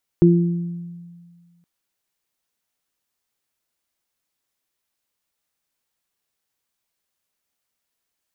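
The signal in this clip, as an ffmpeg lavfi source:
ffmpeg -f lavfi -i "aevalsrc='0.316*pow(10,-3*t/1.81)*sin(2*PI*172*t)+0.316*pow(10,-3*t/0.81)*sin(2*PI*344*t)':duration=1.42:sample_rate=44100" out.wav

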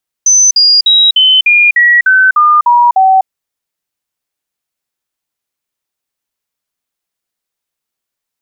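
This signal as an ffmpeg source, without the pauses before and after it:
ffmpeg -f lavfi -i "aevalsrc='0.668*clip(min(mod(t,0.3),0.25-mod(t,0.3))/0.005,0,1)*sin(2*PI*6100*pow(2,-floor(t/0.3)/3)*mod(t,0.3))':duration=3:sample_rate=44100" out.wav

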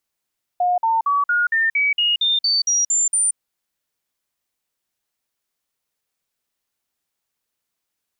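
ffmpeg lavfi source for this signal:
ffmpeg -f lavfi -i "aevalsrc='0.178*clip(min(mod(t,0.23),0.18-mod(t,0.23))/0.005,0,1)*sin(2*PI*717*pow(2,floor(t/0.23)/3)*mod(t,0.23))':duration=2.76:sample_rate=44100" out.wav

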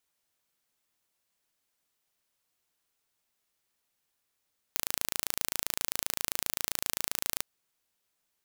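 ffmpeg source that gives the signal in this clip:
ffmpeg -f lavfi -i "aevalsrc='0.75*eq(mod(n,1598),0)':duration=2.67:sample_rate=44100" out.wav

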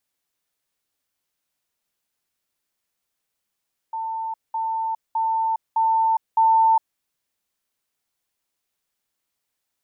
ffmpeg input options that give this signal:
ffmpeg -f lavfi -i "aevalsrc='pow(10,(-25+3*floor(t/0.61))/20)*sin(2*PI*895*t)*clip(min(mod(t,0.61),0.41-mod(t,0.61))/0.005,0,1)':duration=3.05:sample_rate=44100" out.wav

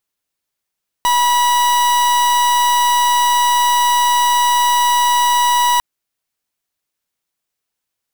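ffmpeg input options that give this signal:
ffmpeg -f lavfi -i "aevalsrc='0.211*(2*lt(mod(973*t,1),0.42)-1)':duration=4.75:sample_rate=44100" out.wav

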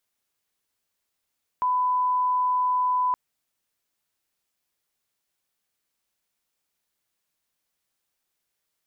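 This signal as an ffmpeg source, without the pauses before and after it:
ffmpeg -f lavfi -i "sine=frequency=1000:duration=1.52:sample_rate=44100,volume=-1.94dB" out.wav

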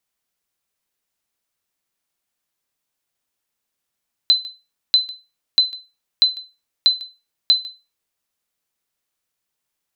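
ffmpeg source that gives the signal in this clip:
ffmpeg -f lavfi -i "aevalsrc='0.531*(sin(2*PI*4040*mod(t,0.64))*exp(-6.91*mod(t,0.64)/0.27)+0.0891*sin(2*PI*4040*max(mod(t,0.64)-0.15,0))*exp(-6.91*max(mod(t,0.64)-0.15,0)/0.27))':duration=3.84:sample_rate=44100" out.wav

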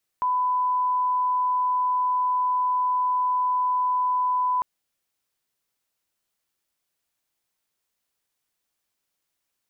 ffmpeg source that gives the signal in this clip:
ffmpeg -f lavfi -i "sine=frequency=1000:duration=4.4:sample_rate=44100,volume=-1.94dB" out.wav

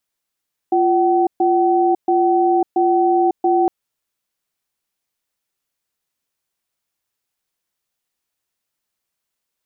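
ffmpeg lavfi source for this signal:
ffmpeg -f lavfi -i "aevalsrc='0.178*(sin(2*PI*348*t)+sin(2*PI*759*t))*clip(min(mod(t,0.68),0.55-mod(t,0.68))/0.005,0,1)':duration=2.96:sample_rate=44100" out.wav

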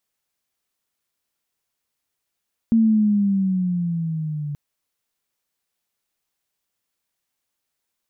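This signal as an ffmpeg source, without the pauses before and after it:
ffmpeg -f lavfi -i "aevalsrc='pow(10,(-12-13*t/1.83)/20)*sin(2*PI*229*1.83/(-8*log(2)/12)*(exp(-8*log(2)/12*t/1.83)-1))':duration=1.83:sample_rate=44100" out.wav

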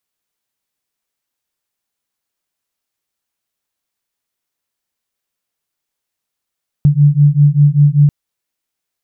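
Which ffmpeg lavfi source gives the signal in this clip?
ffmpeg -f lavfi -i "aevalsrc='0.335*(sin(2*PI*143*t)+sin(2*PI*148.1*t))':duration=1.24:sample_rate=44100" out.wav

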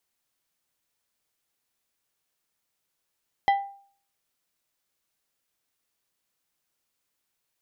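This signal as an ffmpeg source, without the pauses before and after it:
ffmpeg -f lavfi -i "aevalsrc='0.178*pow(10,-3*t/0.5)*sin(2*PI*795*t)+0.0668*pow(10,-3*t/0.263)*sin(2*PI*1987.5*t)+0.0251*pow(10,-3*t/0.189)*sin(2*PI*3180*t)+0.00944*pow(10,-3*t/0.162)*sin(2*PI*3975*t)+0.00355*pow(10,-3*t/0.135)*sin(2*PI*5167.5*t)':duration=0.89:sample_rate=44100" out.wav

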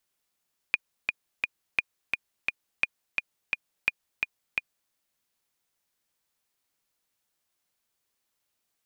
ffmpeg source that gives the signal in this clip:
ffmpeg -f lavfi -i "aevalsrc='pow(10,(-9-3.5*gte(mod(t,3*60/172),60/172))/20)*sin(2*PI*2440*mod(t,60/172))*exp(-6.91*mod(t,60/172)/0.03)':duration=4.18:sample_rate=44100" out.wav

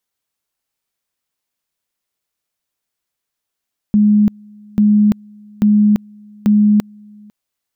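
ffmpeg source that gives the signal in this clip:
ffmpeg -f lavfi -i "aevalsrc='pow(10,(-7.5-29.5*gte(mod(t,0.84),0.34))/20)*sin(2*PI*209*t)':duration=3.36:sample_rate=44100" out.wav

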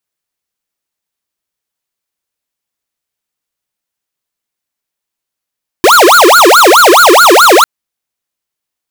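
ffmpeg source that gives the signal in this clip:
ffmpeg -f lavfi -i "aevalsrc='0.668*(2*lt(mod((893*t-557/(2*PI*4.7)*sin(2*PI*4.7*t)),1),0.5)-1)':duration=1.8:sample_rate=44100" out.wav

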